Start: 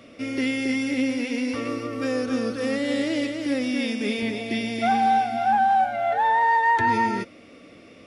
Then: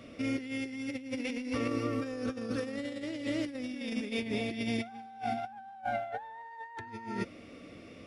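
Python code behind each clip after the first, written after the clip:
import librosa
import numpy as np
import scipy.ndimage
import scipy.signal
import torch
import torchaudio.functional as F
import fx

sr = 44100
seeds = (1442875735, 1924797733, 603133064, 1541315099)

y = fx.low_shelf(x, sr, hz=150.0, db=8.5)
y = fx.over_compress(y, sr, threshold_db=-27.0, ratio=-0.5)
y = y * 10.0 ** (-8.5 / 20.0)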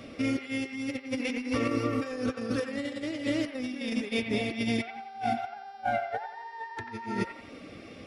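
y = fx.dereverb_blind(x, sr, rt60_s=0.52)
y = fx.echo_wet_bandpass(y, sr, ms=89, feedback_pct=41, hz=1400.0, wet_db=-6.5)
y = fx.dmg_buzz(y, sr, base_hz=400.0, harmonics=14, level_db=-65.0, tilt_db=-3, odd_only=False)
y = y * 10.0 ** (5.0 / 20.0)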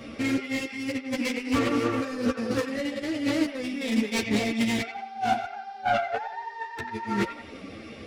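y = fx.self_delay(x, sr, depth_ms=0.2)
y = fx.ensemble(y, sr)
y = y * 10.0 ** (7.5 / 20.0)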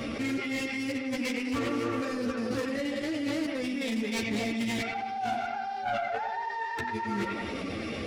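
y = fx.echo_filtered(x, sr, ms=111, feedback_pct=51, hz=2000.0, wet_db=-16.5)
y = fx.env_flatten(y, sr, amount_pct=70)
y = y * 10.0 ** (-8.5 / 20.0)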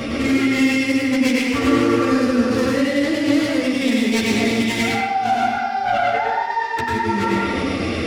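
y = fx.rev_plate(x, sr, seeds[0], rt60_s=0.5, hf_ratio=1.0, predelay_ms=85, drr_db=-0.5)
y = y * 10.0 ** (9.0 / 20.0)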